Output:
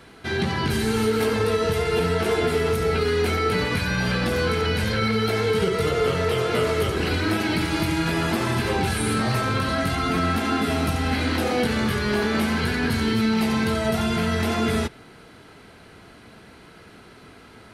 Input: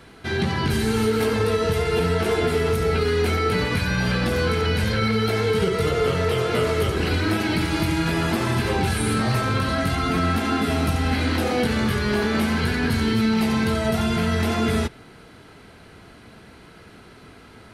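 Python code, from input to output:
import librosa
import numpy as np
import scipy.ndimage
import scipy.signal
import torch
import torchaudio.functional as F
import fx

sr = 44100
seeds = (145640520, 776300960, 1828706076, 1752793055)

y = fx.low_shelf(x, sr, hz=140.0, db=-4.0)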